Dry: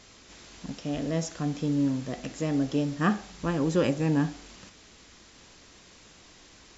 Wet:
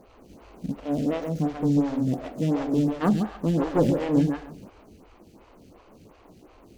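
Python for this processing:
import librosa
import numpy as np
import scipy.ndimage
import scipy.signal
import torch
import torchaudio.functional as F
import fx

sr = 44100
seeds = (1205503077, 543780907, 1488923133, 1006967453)

p1 = scipy.ndimage.median_filter(x, 25, mode='constant')
p2 = 10.0 ** (-29.0 / 20.0) * np.tanh(p1 / 10.0 ** (-29.0 / 20.0))
p3 = p1 + F.gain(torch.from_numpy(p2), -6.0).numpy()
p4 = fx.echo_feedback(p3, sr, ms=138, feedback_pct=22, wet_db=-6.0)
p5 = fx.cheby_harmonics(p4, sr, harmonics=(4, 5, 6), levels_db=(-7, -16, -14), full_scale_db=-9.0)
y = fx.stagger_phaser(p5, sr, hz=2.8)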